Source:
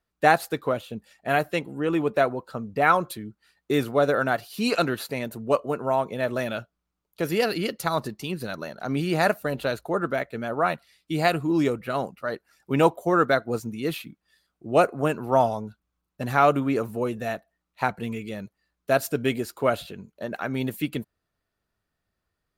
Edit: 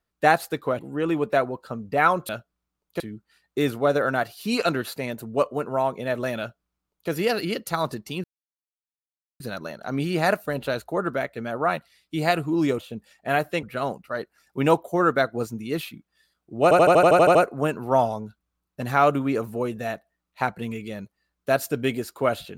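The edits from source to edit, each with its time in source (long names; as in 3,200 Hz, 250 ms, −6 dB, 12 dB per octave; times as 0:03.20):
0:00.79–0:01.63: move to 0:11.76
0:06.52–0:07.23: duplicate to 0:03.13
0:08.37: splice in silence 1.16 s
0:14.76: stutter 0.08 s, 10 plays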